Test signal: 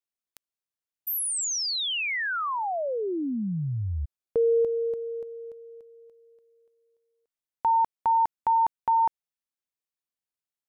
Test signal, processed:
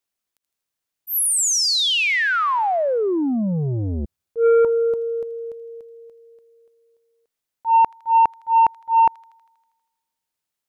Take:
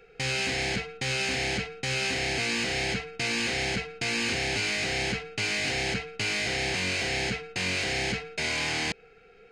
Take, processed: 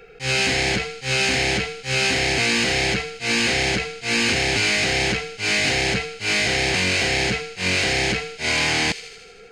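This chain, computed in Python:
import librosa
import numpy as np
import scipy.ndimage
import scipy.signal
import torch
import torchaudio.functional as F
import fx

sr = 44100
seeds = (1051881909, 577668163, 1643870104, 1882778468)

p1 = fx.auto_swell(x, sr, attack_ms=109.0)
p2 = p1 + fx.echo_wet_highpass(p1, sr, ms=80, feedback_pct=66, hz=2700.0, wet_db=-13, dry=0)
p3 = fx.transformer_sat(p2, sr, knee_hz=410.0)
y = p3 * 10.0 ** (9.0 / 20.0)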